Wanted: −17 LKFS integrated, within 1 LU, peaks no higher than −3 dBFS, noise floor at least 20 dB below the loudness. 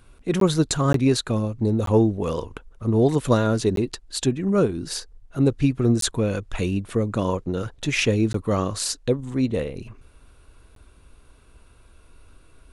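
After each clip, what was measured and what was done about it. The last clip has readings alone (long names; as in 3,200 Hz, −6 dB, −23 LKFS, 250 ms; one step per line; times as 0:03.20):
number of dropouts 7; longest dropout 13 ms; integrated loudness −23.0 LKFS; sample peak −6.0 dBFS; target loudness −17.0 LKFS
→ repair the gap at 0:00.40/0:00.93/0:01.86/0:03.76/0:06.01/0:08.33/0:10.75, 13 ms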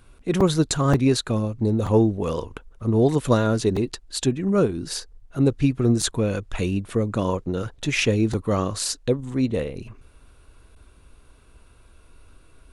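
number of dropouts 0; integrated loudness −23.0 LKFS; sample peak −6.0 dBFS; target loudness −17.0 LKFS
→ level +6 dB
brickwall limiter −3 dBFS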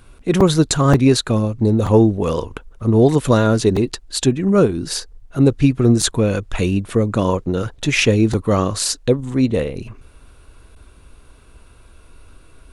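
integrated loudness −17.0 LKFS; sample peak −3.0 dBFS; background noise floor −47 dBFS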